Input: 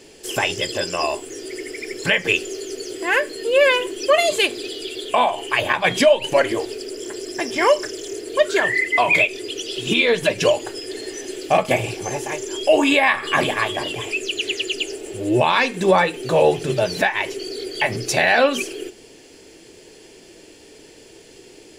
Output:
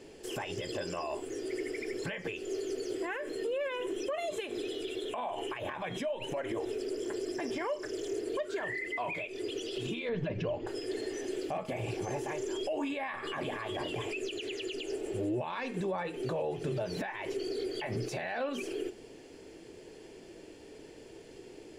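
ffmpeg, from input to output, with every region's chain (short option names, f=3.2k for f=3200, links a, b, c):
-filter_complex "[0:a]asettb=1/sr,asplit=3[a][b][c];[a]atrim=end=3.064[d];[b]atrim=start=3.06:end=6.82,asetpts=PTS-STARTPTS,afade=t=in:d=0.004:c=qsin,afade=t=out:st=3.756:d=0.004:c=qsin,asuperstop=centerf=4600:order=8:qfactor=6.9,acompressor=threshold=-26dB:ratio=8:attack=3.2:release=140:knee=1:detection=peak[e];[c]atrim=start=6.816[f];[d][e]acrossfade=d=0.004:c1=hsin:c2=qsin[g];[g][f]acrossfade=d=0.004:c1=qsin:c2=hsin,asettb=1/sr,asplit=3[h][i][j];[h]atrim=end=10.094[k];[i]atrim=start=10.09:end=10.67,asetpts=PTS-STARTPTS,afade=t=in:d=0.004:c=qsin,afade=t=out:st=0.576:d=0.004:c=qsin,lowpass=f=6.1k:w=0.5412,lowpass=f=6.1k:w=1.3066,bass=f=250:g=11,treble=f=4k:g=-12[l];[j]atrim=start=10.666[m];[k][l]acrossfade=d=0.004:c1=hsin:c2=qsin[n];[n][m]acrossfade=d=0.004:c1=qsin:c2=hsin,acompressor=threshold=-22dB:ratio=10,alimiter=limit=-21.5dB:level=0:latency=1:release=28,highshelf=f=2.3k:g=-11,volume=-3.5dB"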